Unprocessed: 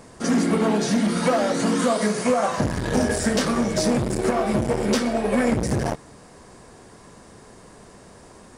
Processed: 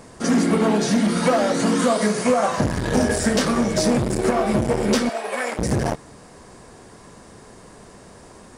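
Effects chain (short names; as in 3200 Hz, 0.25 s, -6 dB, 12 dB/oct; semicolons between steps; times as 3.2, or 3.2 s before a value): 5.09–5.59 HPF 710 Hz 12 dB/oct; gain +2 dB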